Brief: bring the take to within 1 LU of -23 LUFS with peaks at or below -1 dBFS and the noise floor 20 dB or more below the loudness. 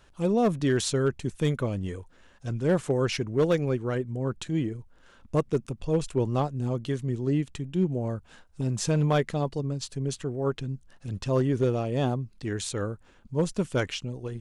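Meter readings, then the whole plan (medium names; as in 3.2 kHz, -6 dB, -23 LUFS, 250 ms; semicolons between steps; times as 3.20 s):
clipped samples 0.6%; clipping level -16.5 dBFS; loudness -28.5 LUFS; peak level -16.5 dBFS; loudness target -23.0 LUFS
-> clip repair -16.5 dBFS; trim +5.5 dB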